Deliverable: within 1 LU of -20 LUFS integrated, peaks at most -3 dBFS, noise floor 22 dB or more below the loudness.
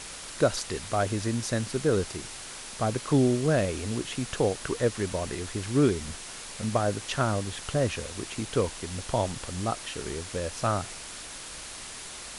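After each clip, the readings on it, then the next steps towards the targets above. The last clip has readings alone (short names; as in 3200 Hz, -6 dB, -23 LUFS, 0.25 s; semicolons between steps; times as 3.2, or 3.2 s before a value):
noise floor -41 dBFS; noise floor target -52 dBFS; loudness -29.5 LUFS; peak -9.0 dBFS; loudness target -20.0 LUFS
-> noise print and reduce 11 dB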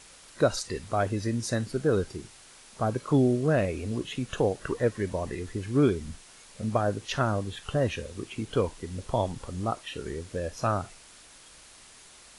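noise floor -52 dBFS; loudness -29.0 LUFS; peak -9.5 dBFS; loudness target -20.0 LUFS
-> gain +9 dB; limiter -3 dBFS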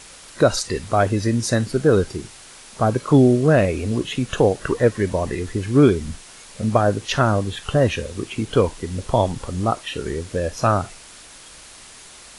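loudness -20.5 LUFS; peak -3.0 dBFS; noise floor -43 dBFS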